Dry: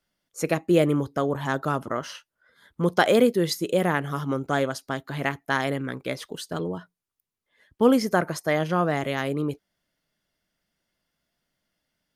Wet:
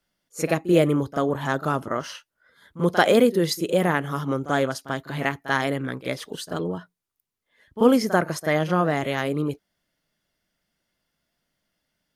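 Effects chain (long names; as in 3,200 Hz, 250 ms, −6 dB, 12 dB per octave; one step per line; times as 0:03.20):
echo ahead of the sound 39 ms −14 dB
level +1.5 dB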